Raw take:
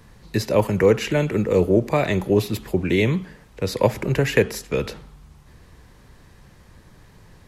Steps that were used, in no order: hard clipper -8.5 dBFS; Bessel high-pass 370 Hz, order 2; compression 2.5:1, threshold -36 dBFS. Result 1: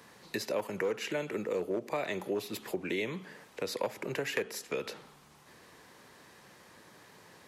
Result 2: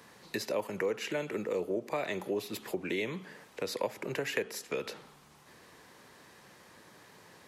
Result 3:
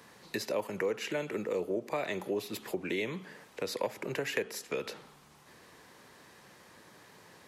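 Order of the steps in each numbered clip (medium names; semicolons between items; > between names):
hard clipper > Bessel high-pass > compression; Bessel high-pass > compression > hard clipper; Bessel high-pass > hard clipper > compression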